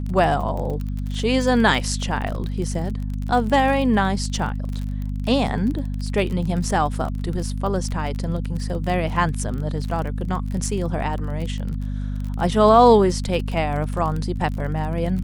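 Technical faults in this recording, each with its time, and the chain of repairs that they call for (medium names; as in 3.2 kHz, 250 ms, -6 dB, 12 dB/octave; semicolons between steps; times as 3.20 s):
crackle 30 per s -27 dBFS
hum 50 Hz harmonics 5 -26 dBFS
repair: de-click; de-hum 50 Hz, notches 5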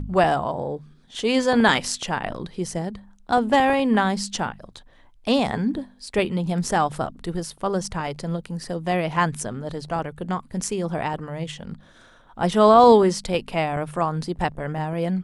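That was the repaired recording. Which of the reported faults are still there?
nothing left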